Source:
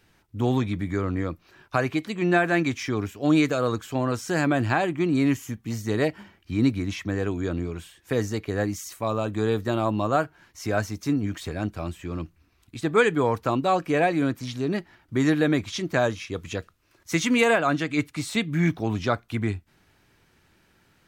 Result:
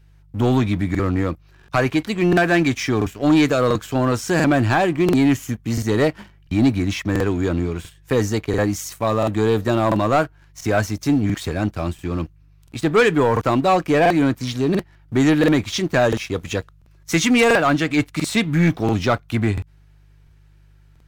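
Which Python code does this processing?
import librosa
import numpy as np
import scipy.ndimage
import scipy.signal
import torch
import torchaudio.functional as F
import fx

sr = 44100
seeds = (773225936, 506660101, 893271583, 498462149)

y = fx.leveller(x, sr, passes=2)
y = fx.dmg_buzz(y, sr, base_hz=50.0, harmonics=3, level_db=-51.0, tilt_db=-5, odd_only=False)
y = fx.buffer_crackle(y, sr, first_s=0.9, period_s=0.69, block=2048, kind='repeat')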